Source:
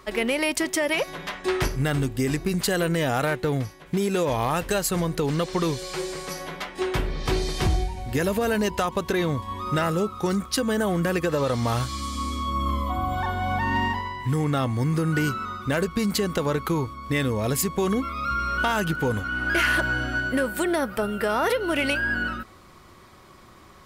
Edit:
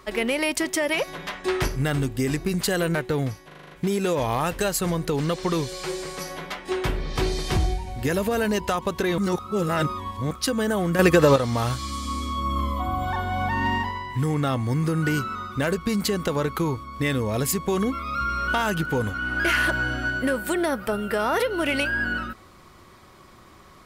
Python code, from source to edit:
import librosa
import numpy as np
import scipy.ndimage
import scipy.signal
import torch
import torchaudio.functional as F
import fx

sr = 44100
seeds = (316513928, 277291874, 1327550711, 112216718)

y = fx.edit(x, sr, fx.cut(start_s=2.95, length_s=0.34),
    fx.stutter(start_s=3.81, slice_s=0.04, count=7),
    fx.reverse_span(start_s=9.28, length_s=1.13),
    fx.clip_gain(start_s=11.09, length_s=0.37, db=8.0), tone=tone)